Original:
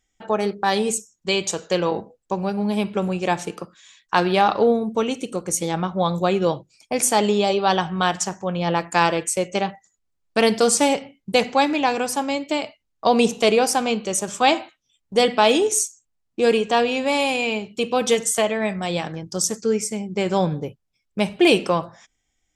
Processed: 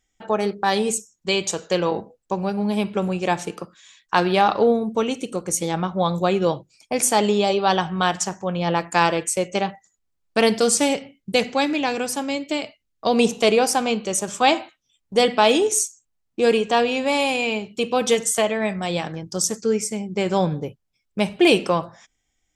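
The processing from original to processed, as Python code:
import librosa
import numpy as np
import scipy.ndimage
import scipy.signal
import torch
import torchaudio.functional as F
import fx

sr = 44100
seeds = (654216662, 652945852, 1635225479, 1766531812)

y = fx.peak_eq(x, sr, hz=910.0, db=-6.0, octaves=1.0, at=(10.6, 13.18))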